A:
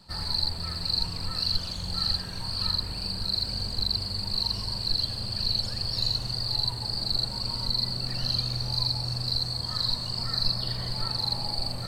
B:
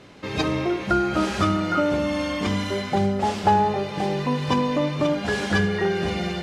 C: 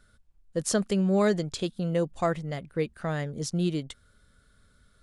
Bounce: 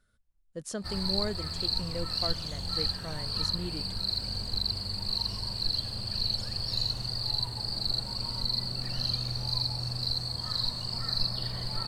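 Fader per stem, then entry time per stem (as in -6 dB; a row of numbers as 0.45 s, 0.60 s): -3.0 dB, mute, -10.5 dB; 0.75 s, mute, 0.00 s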